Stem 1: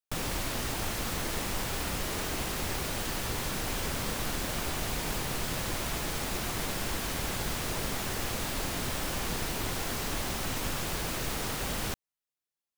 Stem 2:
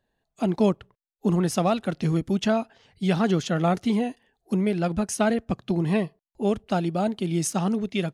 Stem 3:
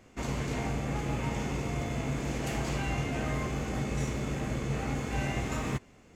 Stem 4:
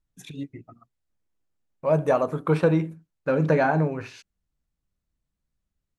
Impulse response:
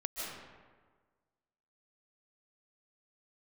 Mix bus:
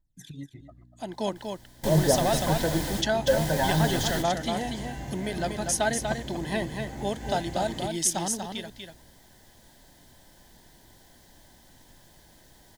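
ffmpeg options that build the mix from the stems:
-filter_complex "[0:a]adelay=1000,volume=0.5dB,asplit=2[link_01][link_02];[link_02]volume=-22.5dB[link_03];[1:a]highpass=frequency=1200:poles=1,dynaudnorm=framelen=130:gausssize=9:maxgain=9.5dB,aeval=exprs='val(0)+0.00355*(sin(2*PI*60*n/s)+sin(2*PI*2*60*n/s)/2+sin(2*PI*3*60*n/s)/3+sin(2*PI*4*60*n/s)/4+sin(2*PI*5*60*n/s)/5)':channel_layout=same,adelay=600,volume=-4.5dB,asplit=2[link_04][link_05];[link_05]volume=-5.5dB[link_06];[2:a]adelay=2100,volume=-5dB[link_07];[3:a]aphaser=in_gain=1:out_gain=1:delay=2.4:decay=0.67:speed=0.49:type=triangular,volume=-5dB,asplit=3[link_08][link_09][link_10];[link_09]volume=-13dB[link_11];[link_10]apad=whole_len=607472[link_12];[link_01][link_12]sidechaingate=range=-33dB:threshold=-49dB:ratio=16:detection=peak[link_13];[link_03][link_06][link_11]amix=inputs=3:normalize=0,aecho=0:1:241:1[link_14];[link_13][link_04][link_07][link_08][link_14]amix=inputs=5:normalize=0,superequalizer=7b=0.631:10b=0.282:12b=0.355"

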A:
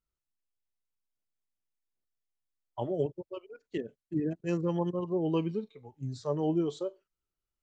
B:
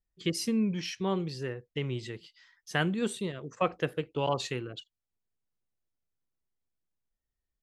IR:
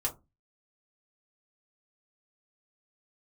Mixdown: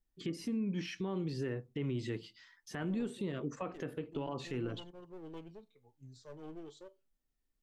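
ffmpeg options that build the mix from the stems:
-filter_complex "[0:a]highshelf=frequency=2000:gain=7,aeval=exprs='clip(val(0),-1,0.0224)':channel_layout=same,volume=-18.5dB,asplit=2[link_01][link_02];[link_02]volume=-16dB[link_03];[1:a]acrossover=split=2500[link_04][link_05];[link_05]acompressor=threshold=-48dB:ratio=4:attack=1:release=60[link_06];[link_04][link_06]amix=inputs=2:normalize=0,equalizer=frequency=250:width=1.7:gain=9,acompressor=threshold=-29dB:ratio=6,volume=-2dB,asplit=2[link_07][link_08];[link_08]volume=-11.5dB[link_09];[2:a]atrim=start_sample=2205[link_10];[link_03][link_09]amix=inputs=2:normalize=0[link_11];[link_11][link_10]afir=irnorm=-1:irlink=0[link_12];[link_01][link_07][link_12]amix=inputs=3:normalize=0,alimiter=level_in=4.5dB:limit=-24dB:level=0:latency=1:release=43,volume=-4.5dB"

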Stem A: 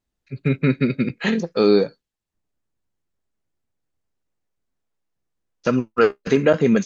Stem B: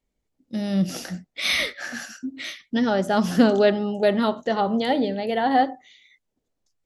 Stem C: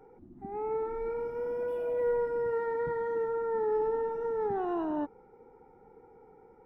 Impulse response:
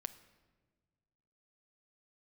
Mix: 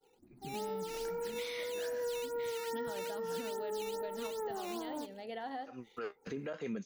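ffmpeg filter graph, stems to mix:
-filter_complex "[0:a]alimiter=limit=-9dB:level=0:latency=1:release=27,acrossover=split=430[link_01][link_02];[link_01]aeval=exprs='val(0)*(1-0.7/2+0.7/2*cos(2*PI*2.2*n/s))':channel_layout=same[link_03];[link_02]aeval=exprs='val(0)*(1-0.7/2-0.7/2*cos(2*PI*2.2*n/s))':channel_layout=same[link_04];[link_03][link_04]amix=inputs=2:normalize=0,volume=-10.5dB,afade=type=in:start_time=5.37:duration=0.64:silence=0.223872[link_05];[1:a]acompressor=threshold=-19dB:ratio=6,volume=-15.5dB,asplit=2[link_06][link_07];[2:a]agate=range=-33dB:threshold=-48dB:ratio=3:detection=peak,acrusher=samples=8:mix=1:aa=0.000001:lfo=1:lforange=12.8:lforate=2.4,volume=-2dB[link_08];[link_07]apad=whole_len=302250[link_09];[link_05][link_09]sidechaincompress=threshold=-58dB:ratio=8:attack=16:release=124[link_10];[link_10][link_06][link_08]amix=inputs=3:normalize=0,lowshelf=frequency=260:gain=-7.5,alimiter=level_in=7dB:limit=-24dB:level=0:latency=1:release=265,volume=-7dB"

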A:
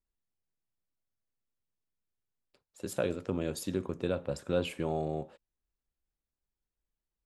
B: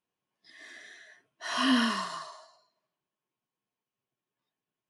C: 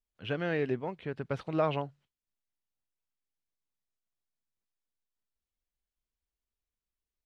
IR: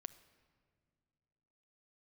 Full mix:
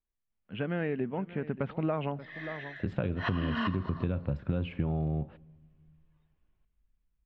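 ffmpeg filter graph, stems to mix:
-filter_complex "[0:a]asubboost=boost=7:cutoff=180,volume=-4dB,asplit=3[link_01][link_02][link_03];[link_02]volume=-12dB[link_04];[1:a]adelay=1750,volume=-1.5dB,asplit=2[link_05][link_06];[link_06]volume=-11dB[link_07];[2:a]equalizer=frequency=210:width_type=o:width=0.57:gain=12,adelay=300,volume=-2.5dB,asplit=3[link_08][link_09][link_10];[link_09]volume=-11dB[link_11];[link_10]volume=-18dB[link_12];[link_03]apad=whole_len=293241[link_13];[link_05][link_13]sidechaincompress=threshold=-44dB:ratio=8:attack=6.3:release=106[link_14];[3:a]atrim=start_sample=2205[link_15];[link_04][link_07][link_11]amix=inputs=3:normalize=0[link_16];[link_16][link_15]afir=irnorm=-1:irlink=0[link_17];[link_12]aecho=0:1:582:1[link_18];[link_01][link_14][link_08][link_17][link_18]amix=inputs=5:normalize=0,dynaudnorm=framelen=210:gausssize=17:maxgain=7.5dB,lowpass=frequency=2900:width=0.5412,lowpass=frequency=2900:width=1.3066,acompressor=threshold=-27dB:ratio=6"

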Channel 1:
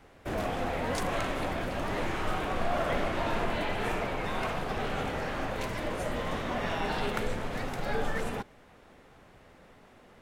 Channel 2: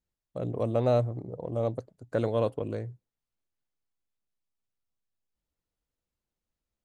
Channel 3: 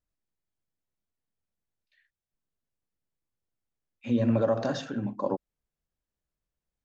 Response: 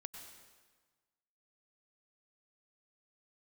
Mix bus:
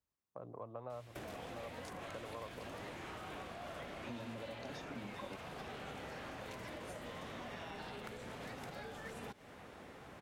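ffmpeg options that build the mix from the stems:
-filter_complex "[0:a]acompressor=threshold=-38dB:ratio=6,adelay=900,volume=2.5dB[link_01];[1:a]lowpass=frequency=1100:width_type=q:width=3.5,lowshelf=frequency=340:gain=-11.5,volume=-7dB[link_02];[2:a]acompressor=threshold=-28dB:ratio=6,volume=-3dB[link_03];[link_01][link_02][link_03]amix=inputs=3:normalize=0,highpass=66,acrossover=split=140|2500[link_04][link_05][link_06];[link_04]acompressor=threshold=-58dB:ratio=4[link_07];[link_05]acompressor=threshold=-47dB:ratio=4[link_08];[link_06]acompressor=threshold=-56dB:ratio=4[link_09];[link_07][link_08][link_09]amix=inputs=3:normalize=0"

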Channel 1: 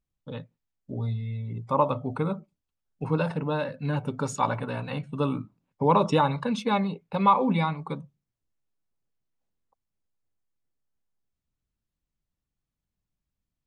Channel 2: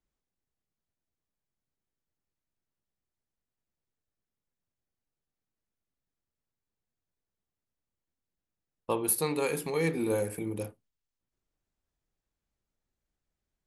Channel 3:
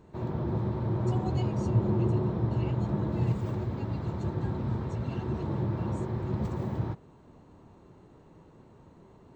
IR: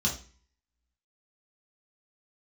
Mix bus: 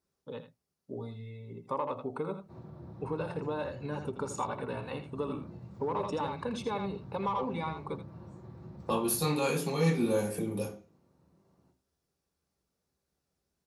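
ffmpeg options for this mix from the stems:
-filter_complex "[0:a]asoftclip=type=tanh:threshold=-13dB,volume=-7dB,asplit=2[link_01][link_02];[link_02]volume=-8.5dB[link_03];[1:a]volume=2dB,asplit=2[link_04][link_05];[link_05]volume=-8dB[link_06];[2:a]alimiter=level_in=1.5dB:limit=-24dB:level=0:latency=1:release=146,volume=-1.5dB,adelay=2350,volume=-13.5dB,asplit=2[link_07][link_08];[link_08]volume=-11dB[link_09];[link_01][link_04]amix=inputs=2:normalize=0,equalizer=frequency=400:width_type=o:width=0.67:gain=10,equalizer=frequency=1000:width_type=o:width=0.67:gain=4,equalizer=frequency=10000:width_type=o:width=0.67:gain=6,acompressor=threshold=-29dB:ratio=10,volume=0dB[link_10];[3:a]atrim=start_sample=2205[link_11];[link_06][link_09]amix=inputs=2:normalize=0[link_12];[link_12][link_11]afir=irnorm=-1:irlink=0[link_13];[link_03]aecho=0:1:82:1[link_14];[link_07][link_10][link_13][link_14]amix=inputs=4:normalize=0,highpass=frequency=210:poles=1"

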